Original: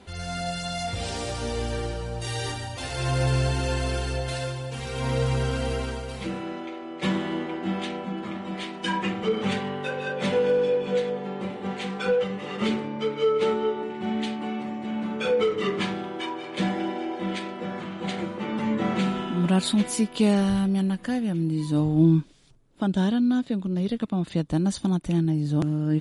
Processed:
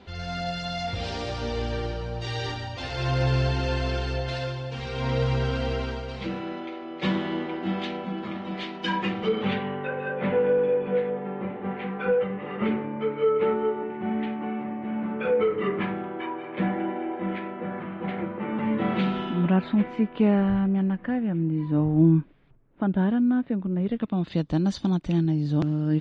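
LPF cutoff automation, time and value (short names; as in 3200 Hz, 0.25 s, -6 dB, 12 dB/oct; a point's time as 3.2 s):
LPF 24 dB/oct
9.2 s 5100 Hz
9.9 s 2300 Hz
18.47 s 2300 Hz
19.27 s 4800 Hz
19.56 s 2300 Hz
23.81 s 2300 Hz
24.38 s 5400 Hz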